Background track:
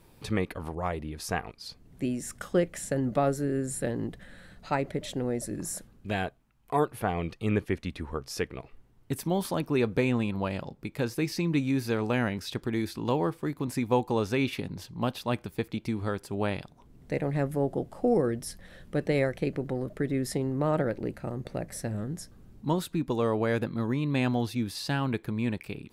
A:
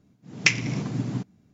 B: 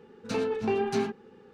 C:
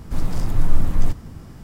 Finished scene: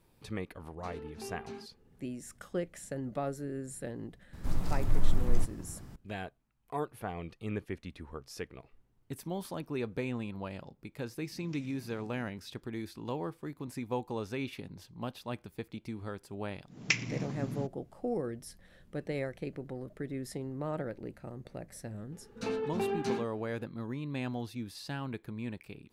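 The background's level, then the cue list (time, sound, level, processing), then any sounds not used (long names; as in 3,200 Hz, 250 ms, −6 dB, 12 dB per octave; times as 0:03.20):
background track −9.5 dB
0:00.54: mix in B −17 dB
0:04.33: mix in C −8.5 dB
0:11.07: mix in A −14 dB + downward compressor, threshold −37 dBFS
0:16.44: mix in A −9 dB
0:22.12: mix in B −5.5 dB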